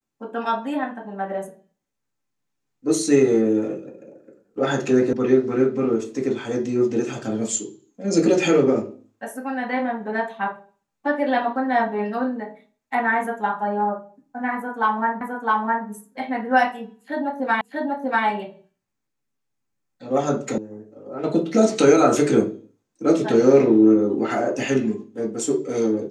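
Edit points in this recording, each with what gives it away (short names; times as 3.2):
5.13 sound cut off
15.21 repeat of the last 0.66 s
17.61 repeat of the last 0.64 s
20.58 sound cut off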